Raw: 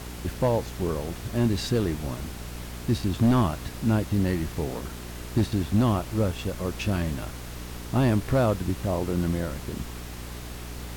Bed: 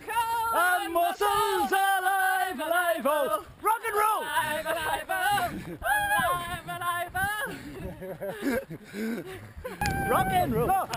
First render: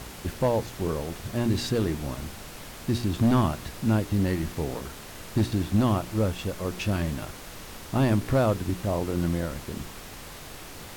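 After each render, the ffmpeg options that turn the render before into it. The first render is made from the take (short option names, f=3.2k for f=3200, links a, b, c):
-af "bandreject=f=60:t=h:w=4,bandreject=f=120:t=h:w=4,bandreject=f=180:t=h:w=4,bandreject=f=240:t=h:w=4,bandreject=f=300:t=h:w=4,bandreject=f=360:t=h:w=4,bandreject=f=420:t=h:w=4"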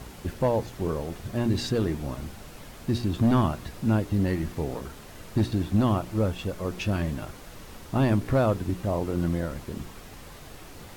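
-af "afftdn=nr=6:nf=-42"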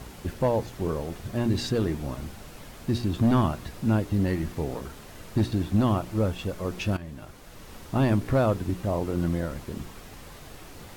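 -filter_complex "[0:a]asplit=2[a][b];[a]atrim=end=6.97,asetpts=PTS-STARTPTS,afade=t=out:st=6.966:d=0.004:c=hsin:silence=0.199526[c];[b]atrim=start=6.97,asetpts=PTS-STARTPTS,afade=t=in:d=0.81:silence=0.199526[d];[c][d]concat=n=2:v=0:a=1"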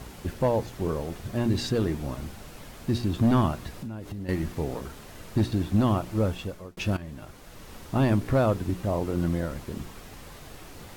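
-filter_complex "[0:a]asettb=1/sr,asplit=3[a][b][c];[a]atrim=end=3.714[d];[b]atrim=start=3.71:end=4.29,asetpts=PTS-STARTPTS,afade=t=in:d=0.004:c=qsin,afade=t=out:st=0.576:d=0.004:c=qsin,acompressor=threshold=-32dB:ratio=10:attack=3.2:release=140:knee=1:detection=peak[e];[c]atrim=start=4.286[f];[d][e]acrossfade=d=0.004:c1=hsin:c2=qsin[g];[g][f]acrossfade=d=0.004:c1=qsin:c2=hsin,asplit=2[h][i];[h]atrim=end=6.77,asetpts=PTS-STARTPTS,afade=t=out:st=6.34:d=0.43[j];[i]atrim=start=6.77,asetpts=PTS-STARTPTS,afade=t=in:d=0.004:c=hsin[k];[j][k]concat=n=2:v=0:a=1"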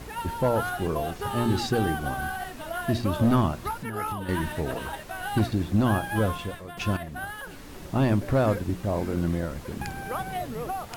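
-filter_complex "[1:a]volume=-7.5dB[a];[0:a][a]amix=inputs=2:normalize=0"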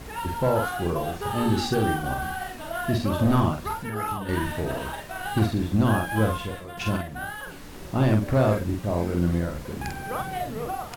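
-filter_complex "[0:a]asplit=2[a][b];[b]adelay=46,volume=-4dB[c];[a][c]amix=inputs=2:normalize=0"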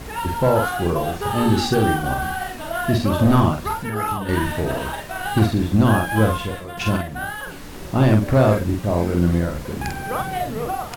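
-af "volume=5.5dB"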